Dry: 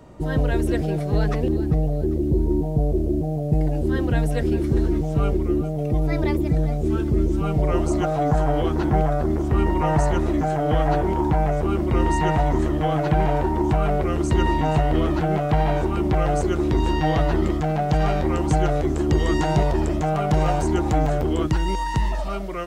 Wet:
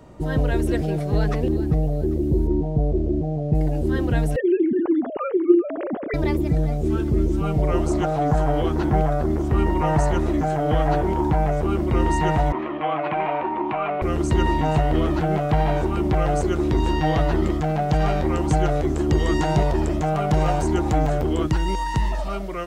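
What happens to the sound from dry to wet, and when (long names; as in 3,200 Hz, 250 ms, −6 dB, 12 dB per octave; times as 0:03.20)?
0:02.47–0:03.55: high-frequency loss of the air 110 metres
0:04.36–0:06.14: three sine waves on the formant tracks
0:07.88–0:08.30: highs frequency-modulated by the lows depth 0.16 ms
0:12.52–0:14.02: loudspeaker in its box 340–3,100 Hz, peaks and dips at 440 Hz −6 dB, 1,100 Hz +7 dB, 1,600 Hz −3 dB, 2,400 Hz +8 dB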